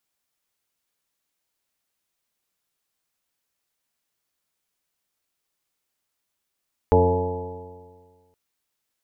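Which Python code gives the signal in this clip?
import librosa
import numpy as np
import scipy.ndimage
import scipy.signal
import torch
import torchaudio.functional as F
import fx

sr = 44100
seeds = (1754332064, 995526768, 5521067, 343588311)

y = fx.additive_stiff(sr, length_s=1.42, hz=87.4, level_db=-17.5, upper_db=(-8.0, -6, -10.0, 3.0, -7.0, -10.5, -17, -2.0, -17.5), decay_s=1.69, stiffness=0.0022)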